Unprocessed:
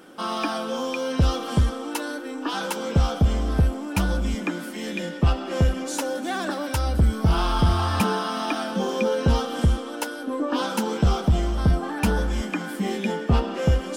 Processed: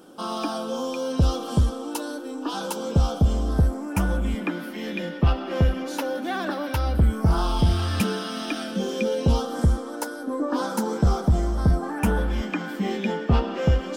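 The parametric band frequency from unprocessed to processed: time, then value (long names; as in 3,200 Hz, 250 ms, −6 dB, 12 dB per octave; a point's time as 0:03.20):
parametric band −13.5 dB 0.79 octaves
0:03.42 2,000 Hz
0:04.59 7,800 Hz
0:06.93 7,800 Hz
0:07.77 940 Hz
0:09.02 940 Hz
0:09.57 2,800 Hz
0:11.84 2,800 Hz
0:12.49 10,000 Hz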